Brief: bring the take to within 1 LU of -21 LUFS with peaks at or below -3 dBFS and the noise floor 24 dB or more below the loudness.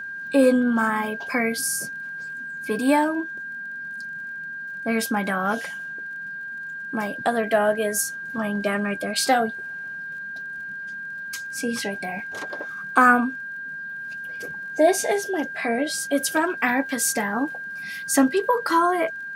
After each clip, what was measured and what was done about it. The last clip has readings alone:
ticks 32/s; steady tone 1600 Hz; tone level -31 dBFS; loudness -24.5 LUFS; peak -4.5 dBFS; loudness target -21.0 LUFS
-> de-click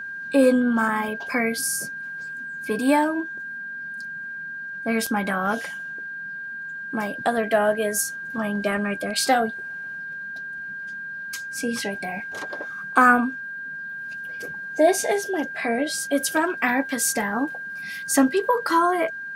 ticks 0/s; steady tone 1600 Hz; tone level -31 dBFS
-> notch 1600 Hz, Q 30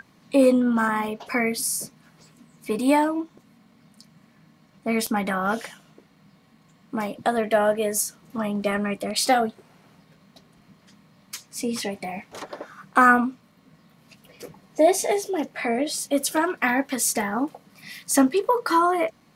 steady tone none; loudness -23.0 LUFS; peak -5.5 dBFS; loudness target -21.0 LUFS
-> gain +2 dB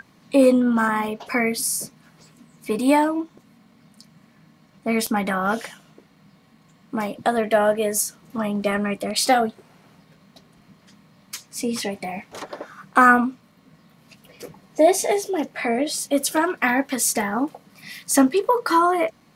loudness -21.0 LUFS; peak -3.5 dBFS; noise floor -56 dBFS

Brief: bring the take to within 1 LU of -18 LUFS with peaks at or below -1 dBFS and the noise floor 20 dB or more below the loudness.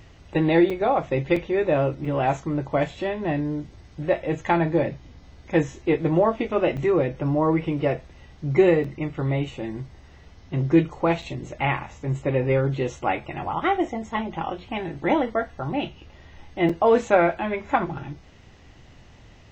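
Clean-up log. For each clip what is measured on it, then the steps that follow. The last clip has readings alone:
dropouts 7; longest dropout 4.4 ms; loudness -24.0 LUFS; peak -5.0 dBFS; loudness target -18.0 LUFS
-> interpolate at 0.7/1.36/2.05/6.77/8.84/11.22/16.69, 4.4 ms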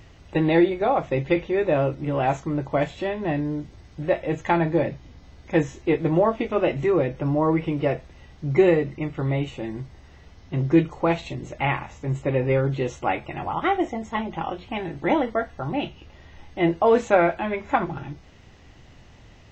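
dropouts 0; loudness -24.0 LUFS; peak -5.0 dBFS; loudness target -18.0 LUFS
-> gain +6 dB; limiter -1 dBFS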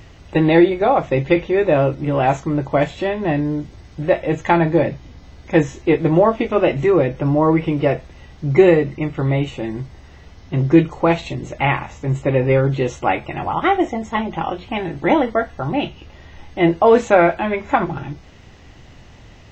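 loudness -18.0 LUFS; peak -1.0 dBFS; noise floor -43 dBFS

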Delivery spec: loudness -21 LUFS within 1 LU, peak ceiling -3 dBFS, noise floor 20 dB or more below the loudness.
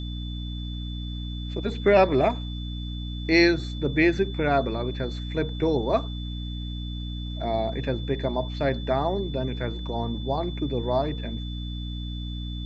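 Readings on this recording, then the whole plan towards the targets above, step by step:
hum 60 Hz; harmonics up to 300 Hz; hum level -30 dBFS; steady tone 3500 Hz; tone level -41 dBFS; loudness -26.5 LUFS; peak -5.5 dBFS; loudness target -21.0 LUFS
-> de-hum 60 Hz, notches 5; notch 3500 Hz, Q 30; gain +5.5 dB; limiter -3 dBFS

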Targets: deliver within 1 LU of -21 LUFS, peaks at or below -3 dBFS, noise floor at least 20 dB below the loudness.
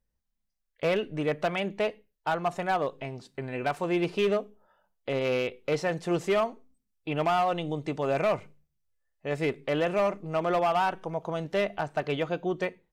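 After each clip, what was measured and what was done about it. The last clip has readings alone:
clipped 1.5%; flat tops at -20.0 dBFS; loudness -29.0 LUFS; peak -20.0 dBFS; loudness target -21.0 LUFS
-> clip repair -20 dBFS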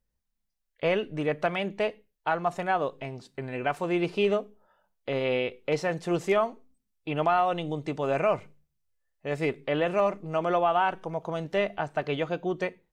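clipped 0.0%; loudness -28.5 LUFS; peak -13.0 dBFS; loudness target -21.0 LUFS
-> gain +7.5 dB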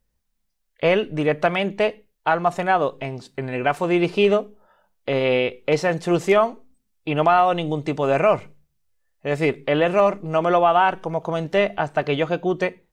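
loudness -21.0 LUFS; peak -5.5 dBFS; noise floor -72 dBFS

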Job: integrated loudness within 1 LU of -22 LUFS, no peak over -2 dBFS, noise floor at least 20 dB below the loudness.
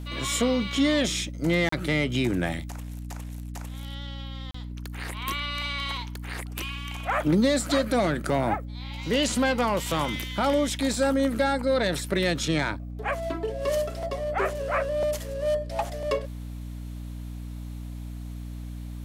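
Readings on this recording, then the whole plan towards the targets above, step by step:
dropouts 2; longest dropout 34 ms; hum 60 Hz; harmonics up to 300 Hz; hum level -34 dBFS; loudness -26.5 LUFS; peak -12.0 dBFS; loudness target -22.0 LUFS
-> interpolate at 1.69/4.51, 34 ms; de-hum 60 Hz, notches 5; gain +4.5 dB

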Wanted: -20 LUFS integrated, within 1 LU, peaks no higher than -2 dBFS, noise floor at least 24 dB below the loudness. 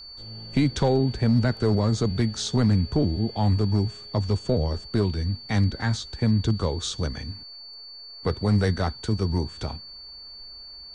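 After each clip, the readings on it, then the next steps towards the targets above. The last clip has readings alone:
clipped 0.3%; flat tops at -13.5 dBFS; steady tone 4500 Hz; tone level -40 dBFS; loudness -25.0 LUFS; peak -13.5 dBFS; loudness target -20.0 LUFS
-> clip repair -13.5 dBFS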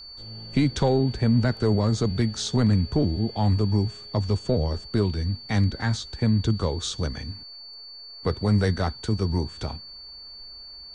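clipped 0.0%; steady tone 4500 Hz; tone level -40 dBFS
-> notch 4500 Hz, Q 30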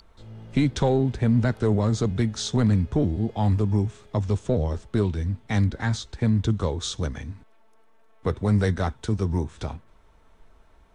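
steady tone none; loudness -25.0 LUFS; peak -11.0 dBFS; loudness target -20.0 LUFS
-> gain +5 dB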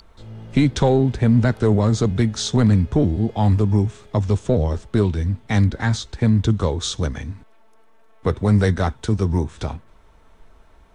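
loudness -20.0 LUFS; peak -6.0 dBFS; noise floor -50 dBFS

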